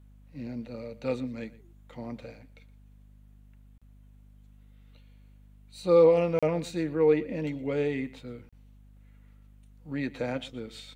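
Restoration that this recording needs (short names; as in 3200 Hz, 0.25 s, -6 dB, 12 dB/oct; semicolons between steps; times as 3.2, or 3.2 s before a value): de-hum 50.4 Hz, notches 5; interpolate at 3.78/6.39/8.49, 36 ms; inverse comb 0.119 s -19 dB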